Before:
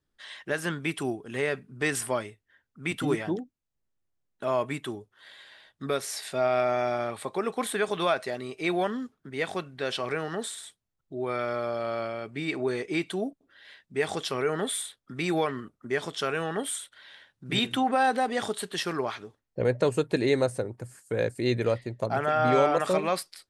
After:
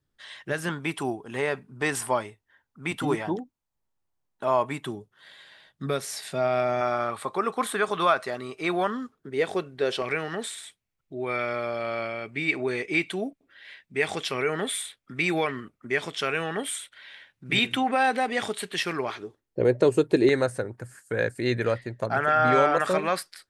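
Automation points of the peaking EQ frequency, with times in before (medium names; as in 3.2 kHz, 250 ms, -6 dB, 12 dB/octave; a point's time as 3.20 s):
peaking EQ +9 dB 0.66 oct
120 Hz
from 0.69 s 910 Hz
from 4.86 s 160 Hz
from 6.81 s 1.2 kHz
from 9.15 s 420 Hz
from 10.02 s 2.3 kHz
from 19.10 s 360 Hz
from 20.29 s 1.6 kHz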